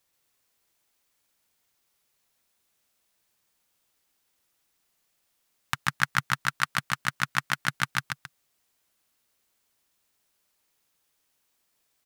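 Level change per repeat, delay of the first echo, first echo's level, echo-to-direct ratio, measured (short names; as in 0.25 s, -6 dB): -11.0 dB, 0.134 s, -4.0 dB, -3.5 dB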